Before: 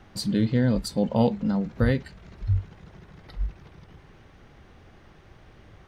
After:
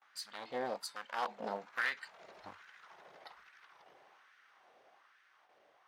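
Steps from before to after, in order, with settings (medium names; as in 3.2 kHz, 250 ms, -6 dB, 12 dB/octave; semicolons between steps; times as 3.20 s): one-sided wavefolder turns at -22 dBFS; Doppler pass-by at 2.59 s, 7 m/s, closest 7.7 m; gate with hold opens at -51 dBFS; LFO high-pass sine 1.2 Hz 580–1600 Hz; trim -4 dB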